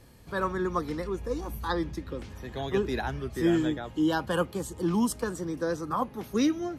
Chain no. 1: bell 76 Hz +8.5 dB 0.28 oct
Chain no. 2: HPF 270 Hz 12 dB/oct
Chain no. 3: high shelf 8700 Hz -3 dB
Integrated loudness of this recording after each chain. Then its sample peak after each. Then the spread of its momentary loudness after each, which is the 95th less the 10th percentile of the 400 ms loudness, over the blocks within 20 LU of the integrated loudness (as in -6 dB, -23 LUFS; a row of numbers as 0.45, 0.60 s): -30.0, -31.5, -30.0 LUFS; -13.5, -14.0, -14.0 dBFS; 8, 8, 8 LU